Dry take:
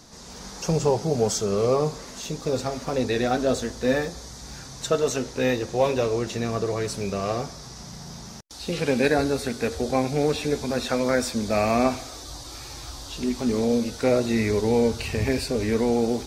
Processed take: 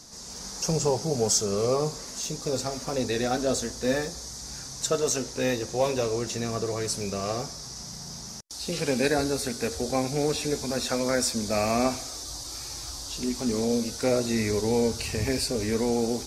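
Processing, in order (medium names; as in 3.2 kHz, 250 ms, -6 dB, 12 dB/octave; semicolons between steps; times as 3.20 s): high-order bell 7.6 kHz +8.5 dB; trim -3.5 dB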